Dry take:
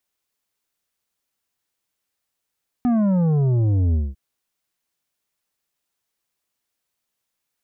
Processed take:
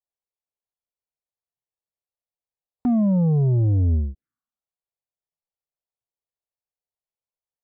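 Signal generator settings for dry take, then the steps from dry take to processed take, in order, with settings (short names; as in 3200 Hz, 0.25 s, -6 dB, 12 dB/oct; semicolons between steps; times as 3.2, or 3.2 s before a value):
sub drop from 250 Hz, over 1.30 s, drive 8.5 dB, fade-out 0.21 s, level -16.5 dB
Wiener smoothing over 15 samples; envelope phaser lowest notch 260 Hz, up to 1500 Hz, full sweep at -25 dBFS; spectral noise reduction 10 dB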